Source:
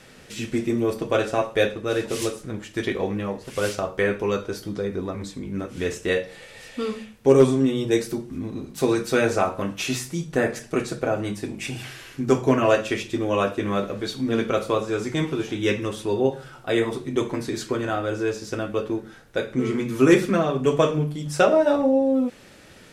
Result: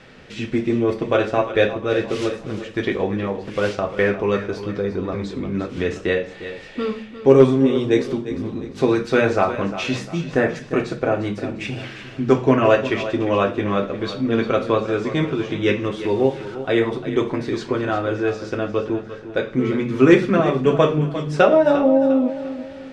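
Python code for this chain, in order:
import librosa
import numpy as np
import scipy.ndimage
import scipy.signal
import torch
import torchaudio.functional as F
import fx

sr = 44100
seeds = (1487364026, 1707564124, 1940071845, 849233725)

y = fx.delta_mod(x, sr, bps=64000, step_db=-37.5, at=(15.99, 16.55))
y = scipy.signal.sosfilt(scipy.signal.butter(2, 3700.0, 'lowpass', fs=sr, output='sos'), y)
y = fx.echo_feedback(y, sr, ms=351, feedback_pct=40, wet_db=-12.5)
y = fx.band_squash(y, sr, depth_pct=40, at=(5.12, 6.24))
y = y * librosa.db_to_amplitude(3.5)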